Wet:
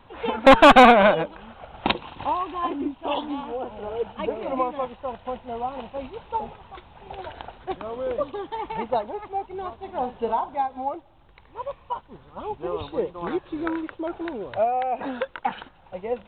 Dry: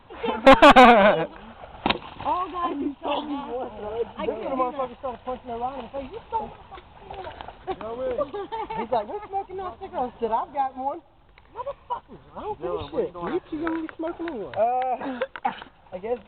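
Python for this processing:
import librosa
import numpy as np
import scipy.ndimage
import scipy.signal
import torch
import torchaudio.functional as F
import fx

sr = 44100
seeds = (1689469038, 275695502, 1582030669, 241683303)

y = fx.doubler(x, sr, ms=49.0, db=-11.5, at=(9.77, 10.59))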